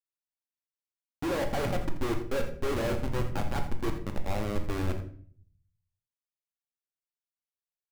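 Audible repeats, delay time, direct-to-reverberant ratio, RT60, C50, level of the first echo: 1, 83 ms, 3.5 dB, 0.50 s, 8.5 dB, -13.0 dB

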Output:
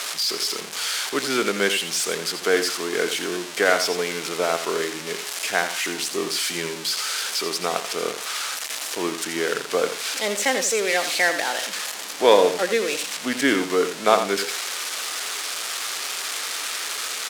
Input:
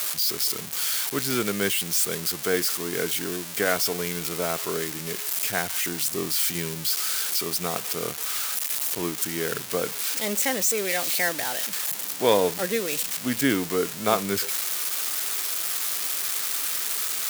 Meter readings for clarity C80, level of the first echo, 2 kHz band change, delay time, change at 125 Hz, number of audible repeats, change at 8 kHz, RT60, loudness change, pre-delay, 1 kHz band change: no reverb, -9.5 dB, +6.0 dB, 84 ms, -6.0 dB, 2, 0.0 dB, no reverb, +1.5 dB, no reverb, +6.0 dB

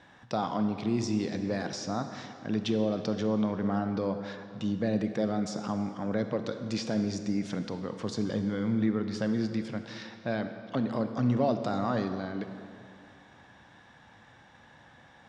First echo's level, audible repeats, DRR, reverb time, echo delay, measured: no echo, no echo, 7.5 dB, 2.4 s, no echo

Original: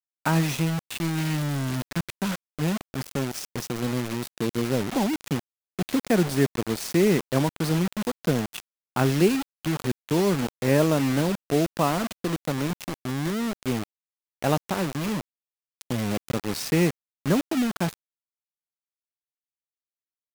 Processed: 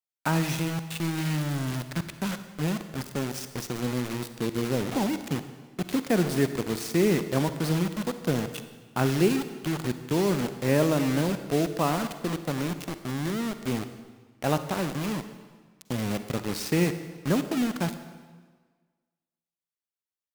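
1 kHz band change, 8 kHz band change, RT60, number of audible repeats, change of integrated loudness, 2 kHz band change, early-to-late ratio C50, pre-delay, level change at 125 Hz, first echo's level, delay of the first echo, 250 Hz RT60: -2.0 dB, -2.0 dB, 1.5 s, no echo, -2.0 dB, -2.0 dB, 10.5 dB, 40 ms, -2.0 dB, no echo, no echo, 1.5 s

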